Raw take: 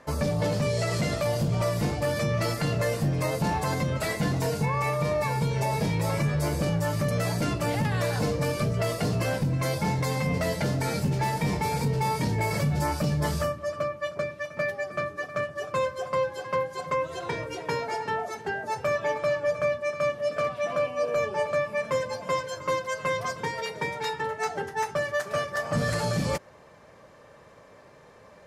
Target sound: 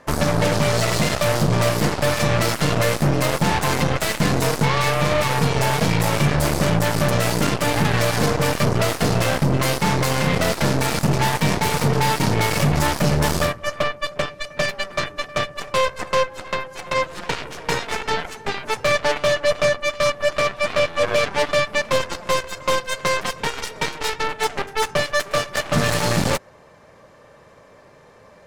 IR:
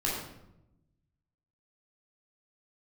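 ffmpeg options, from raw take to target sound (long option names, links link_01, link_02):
-filter_complex "[0:a]asplit=3[link_01][link_02][link_03];[link_01]afade=type=out:start_time=16.22:duration=0.02[link_04];[link_02]acompressor=threshold=-28dB:ratio=3,afade=type=in:start_time=16.22:duration=0.02,afade=type=out:start_time=16.94:duration=0.02[link_05];[link_03]afade=type=in:start_time=16.94:duration=0.02[link_06];[link_04][link_05][link_06]amix=inputs=3:normalize=0,aeval=exprs='0.141*(cos(1*acos(clip(val(0)/0.141,-1,1)))-cos(1*PI/2))+0.02*(cos(6*acos(clip(val(0)/0.141,-1,1)))-cos(6*PI/2))+0.0355*(cos(7*acos(clip(val(0)/0.141,-1,1)))-cos(7*PI/2))':channel_layout=same,volume=6dB"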